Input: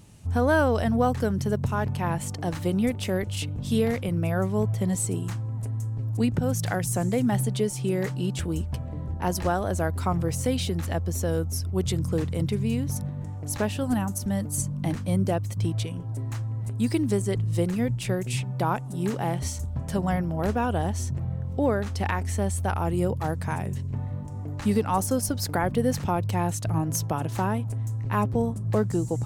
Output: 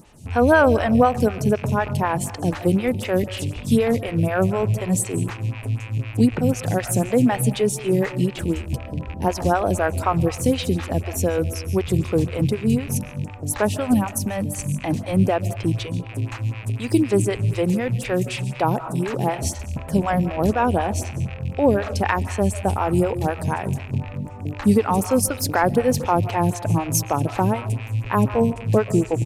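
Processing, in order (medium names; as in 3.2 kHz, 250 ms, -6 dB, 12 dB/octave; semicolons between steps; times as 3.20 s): rattle on loud lows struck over -29 dBFS, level -33 dBFS; on a send at -14 dB: reverberation RT60 0.65 s, pre-delay 100 ms; on the sum: resampled via 32 kHz; lamp-driven phase shifter 4 Hz; trim +8.5 dB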